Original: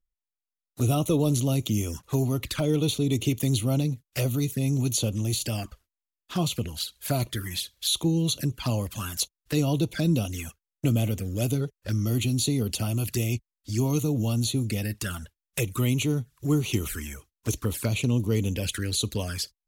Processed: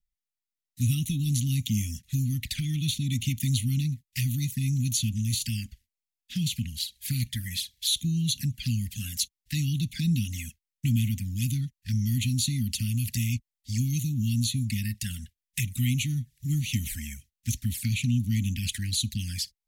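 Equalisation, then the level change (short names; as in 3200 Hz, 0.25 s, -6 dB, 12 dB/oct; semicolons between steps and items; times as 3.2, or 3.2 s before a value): Chebyshev band-stop 240–1900 Hz, order 4; 0.0 dB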